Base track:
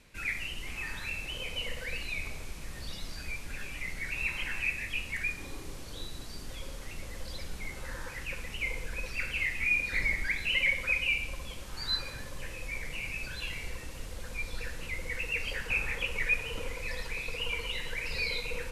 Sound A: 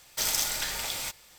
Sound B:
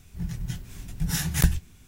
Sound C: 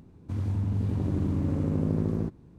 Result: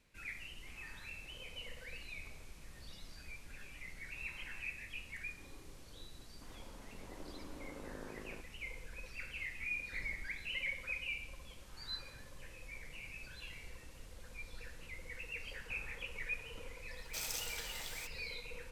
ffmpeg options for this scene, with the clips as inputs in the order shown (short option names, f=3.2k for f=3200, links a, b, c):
-filter_complex "[0:a]volume=-12dB[a];[3:a]highpass=600,atrim=end=2.58,asetpts=PTS-STARTPTS,volume=-8.5dB,afade=t=in:d=0.004:c=hsin,afade=t=out:st=2.576:d=0.004:c=hsin,adelay=6120[b];[1:a]atrim=end=1.38,asetpts=PTS-STARTPTS,volume=-14dB,afade=t=in:d=0.004:c=hsin,afade=t=out:st=1.376:d=0.004:c=hsin,adelay=16960[c];[a][b][c]amix=inputs=3:normalize=0"